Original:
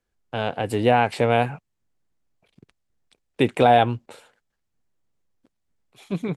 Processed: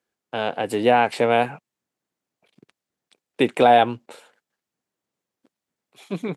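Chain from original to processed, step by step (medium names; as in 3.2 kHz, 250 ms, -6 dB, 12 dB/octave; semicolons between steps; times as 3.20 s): high-pass 210 Hz 12 dB/octave; trim +1.5 dB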